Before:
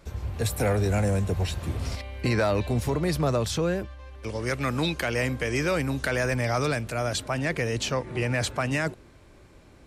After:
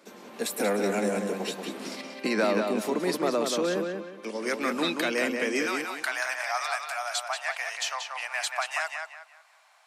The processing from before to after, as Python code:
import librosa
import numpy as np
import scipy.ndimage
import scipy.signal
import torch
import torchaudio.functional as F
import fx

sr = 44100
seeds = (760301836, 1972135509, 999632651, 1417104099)

y = fx.cheby1_highpass(x, sr, hz=fx.steps((0.0, 200.0), (5.65, 700.0)), order=5)
y = fx.echo_filtered(y, sr, ms=183, feedback_pct=32, hz=4800.0, wet_db=-4.5)